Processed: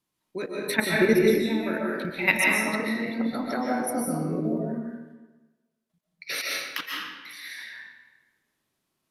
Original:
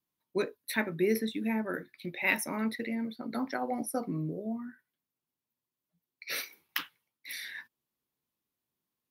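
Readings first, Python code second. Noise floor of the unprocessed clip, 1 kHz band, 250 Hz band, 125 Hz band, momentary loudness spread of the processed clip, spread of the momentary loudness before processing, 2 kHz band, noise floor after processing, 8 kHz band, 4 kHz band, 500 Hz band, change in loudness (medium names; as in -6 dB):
under -85 dBFS, +6.5 dB, +7.0 dB, +7.5 dB, 18 LU, 13 LU, +9.0 dB, -80 dBFS, +7.5 dB, +8.0 dB, +8.5 dB, +8.0 dB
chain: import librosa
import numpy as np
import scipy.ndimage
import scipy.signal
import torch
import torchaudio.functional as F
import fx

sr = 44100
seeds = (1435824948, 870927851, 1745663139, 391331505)

y = scipy.signal.sosfilt(scipy.signal.butter(4, 12000.0, 'lowpass', fs=sr, output='sos'), x)
y = fx.level_steps(y, sr, step_db=13)
y = fx.rev_freeverb(y, sr, rt60_s=1.2, hf_ratio=0.8, predelay_ms=100, drr_db=-3.0)
y = y * librosa.db_to_amplitude(8.5)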